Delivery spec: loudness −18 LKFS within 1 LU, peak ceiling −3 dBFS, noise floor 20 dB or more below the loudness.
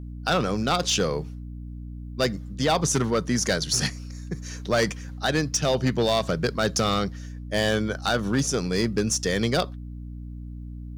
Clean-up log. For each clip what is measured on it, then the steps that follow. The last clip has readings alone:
share of clipped samples 1.1%; peaks flattened at −15.5 dBFS; mains hum 60 Hz; hum harmonics up to 300 Hz; level of the hum −34 dBFS; integrated loudness −25.0 LKFS; sample peak −15.5 dBFS; target loudness −18.0 LKFS
→ clipped peaks rebuilt −15.5 dBFS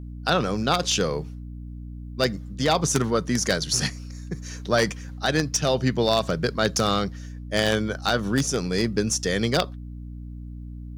share of clipped samples 0.0%; mains hum 60 Hz; hum harmonics up to 180 Hz; level of the hum −34 dBFS
→ mains-hum notches 60/120/180 Hz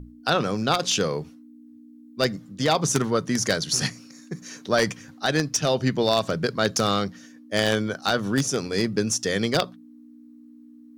mains hum none found; integrated loudness −24.0 LKFS; sample peak −6.0 dBFS; target loudness −18.0 LKFS
→ level +6 dB
brickwall limiter −3 dBFS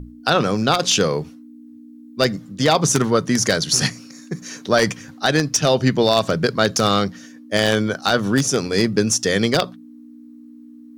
integrated loudness −18.5 LKFS; sample peak −3.0 dBFS; background noise floor −42 dBFS

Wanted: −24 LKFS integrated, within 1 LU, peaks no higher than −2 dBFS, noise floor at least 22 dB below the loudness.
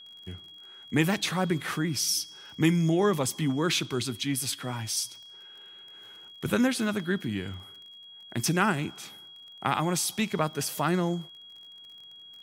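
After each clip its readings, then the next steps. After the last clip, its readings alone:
crackle rate 38 per second; interfering tone 3,300 Hz; level of the tone −46 dBFS; integrated loudness −28.0 LKFS; sample peak −8.5 dBFS; target loudness −24.0 LKFS
→ click removal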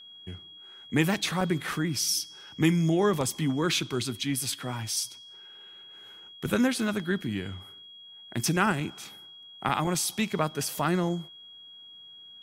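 crackle rate 0.32 per second; interfering tone 3,300 Hz; level of the tone −46 dBFS
→ notch filter 3,300 Hz, Q 30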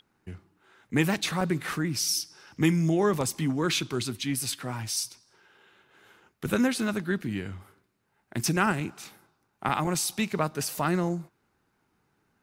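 interfering tone none found; integrated loudness −28.0 LKFS; sample peak −9.0 dBFS; target loudness −24.0 LKFS
→ level +4 dB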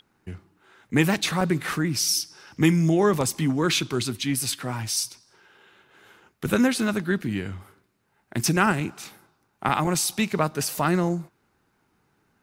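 integrated loudness −24.0 LKFS; sample peak −5.0 dBFS; background noise floor −69 dBFS

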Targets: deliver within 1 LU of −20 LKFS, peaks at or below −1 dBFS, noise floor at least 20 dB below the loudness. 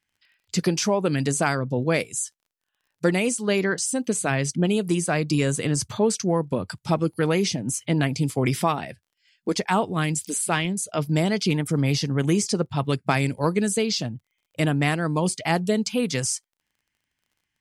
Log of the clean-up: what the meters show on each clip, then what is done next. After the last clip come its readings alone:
crackle rate 25 per second; integrated loudness −24.0 LKFS; sample peak −6.5 dBFS; target loudness −20.0 LKFS
→ click removal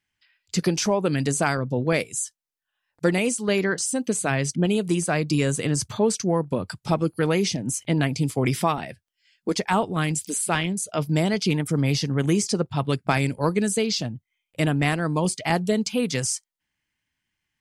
crackle rate 0 per second; integrated loudness −24.0 LKFS; sample peak −6.5 dBFS; target loudness −20.0 LKFS
→ level +4 dB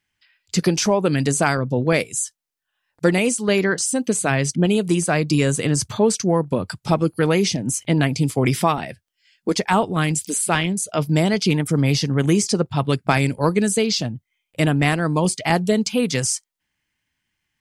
integrated loudness −20.0 LKFS; sample peak −3.0 dBFS; background noise floor −79 dBFS

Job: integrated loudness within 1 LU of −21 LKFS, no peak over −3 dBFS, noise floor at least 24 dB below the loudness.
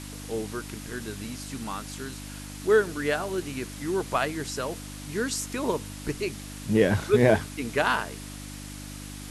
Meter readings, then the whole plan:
mains hum 50 Hz; hum harmonics up to 300 Hz; level of the hum −38 dBFS; background noise floor −40 dBFS; target noise floor −52 dBFS; integrated loudness −28.0 LKFS; sample peak −6.5 dBFS; target loudness −21.0 LKFS
→ hum removal 50 Hz, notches 6
noise reduction from a noise print 12 dB
level +7 dB
brickwall limiter −3 dBFS

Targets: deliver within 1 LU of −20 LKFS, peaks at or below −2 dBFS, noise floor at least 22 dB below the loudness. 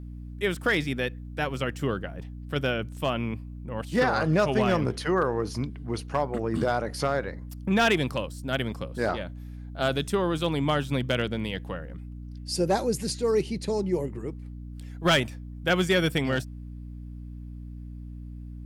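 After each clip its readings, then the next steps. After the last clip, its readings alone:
share of clipped samples 0.3%; peaks flattened at −15.5 dBFS; mains hum 60 Hz; hum harmonics up to 300 Hz; level of the hum −37 dBFS; integrated loudness −27.5 LKFS; sample peak −15.5 dBFS; target loudness −20.0 LKFS
→ clipped peaks rebuilt −15.5 dBFS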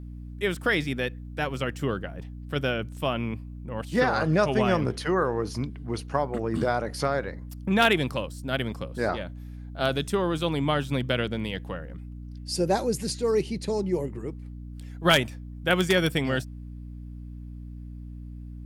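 share of clipped samples 0.0%; mains hum 60 Hz; hum harmonics up to 300 Hz; level of the hum −37 dBFS
→ hum removal 60 Hz, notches 5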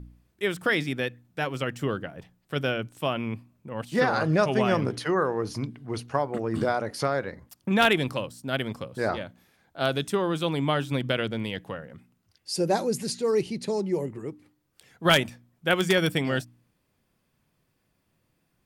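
mains hum none found; integrated loudness −27.0 LKFS; sample peak −6.0 dBFS; target loudness −20.0 LKFS
→ level +7 dB
brickwall limiter −2 dBFS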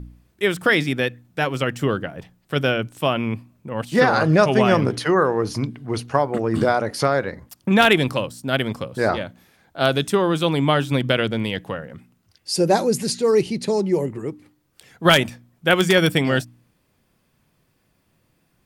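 integrated loudness −20.5 LKFS; sample peak −2.0 dBFS; background noise floor −66 dBFS

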